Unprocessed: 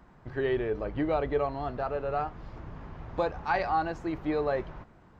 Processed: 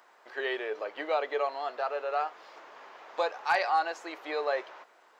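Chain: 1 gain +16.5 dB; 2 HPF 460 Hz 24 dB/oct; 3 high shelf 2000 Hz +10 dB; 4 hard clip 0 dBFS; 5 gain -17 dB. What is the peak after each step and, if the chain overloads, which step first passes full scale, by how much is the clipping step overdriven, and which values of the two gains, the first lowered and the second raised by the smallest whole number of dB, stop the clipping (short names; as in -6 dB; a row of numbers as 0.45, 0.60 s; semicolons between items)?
+1.0, +1.0, +4.0, 0.0, -17.0 dBFS; step 1, 4.0 dB; step 1 +12.5 dB, step 5 -13 dB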